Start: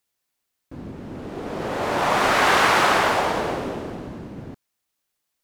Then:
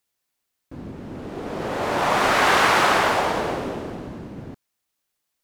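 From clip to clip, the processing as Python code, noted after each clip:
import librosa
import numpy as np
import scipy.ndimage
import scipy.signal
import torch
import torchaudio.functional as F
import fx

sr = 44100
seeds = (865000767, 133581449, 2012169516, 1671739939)

y = x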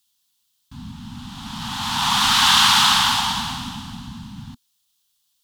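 y = scipy.signal.sosfilt(scipy.signal.ellip(3, 1.0, 40, [240.0, 870.0], 'bandstop', fs=sr, output='sos'), x)
y = fx.high_shelf_res(y, sr, hz=2700.0, db=6.5, q=3.0)
y = y * 10.0 ** (2.5 / 20.0)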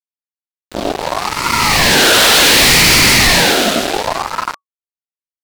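y = fx.fuzz(x, sr, gain_db=31.0, gate_db=-36.0)
y = fx.ring_lfo(y, sr, carrier_hz=810.0, swing_pct=45, hz=0.67)
y = y * 10.0 ** (8.5 / 20.0)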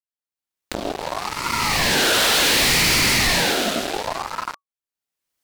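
y = fx.recorder_agc(x, sr, target_db=-9.0, rise_db_per_s=31.0, max_gain_db=30)
y = y * 10.0 ** (-8.5 / 20.0)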